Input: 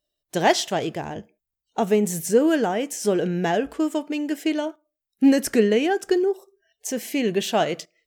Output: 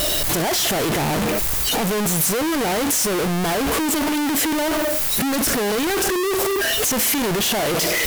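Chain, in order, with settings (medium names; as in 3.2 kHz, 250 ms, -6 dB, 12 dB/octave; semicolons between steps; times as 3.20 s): one-bit comparator; peaking EQ 12 kHz +4.5 dB 0.54 oct; trim +2.5 dB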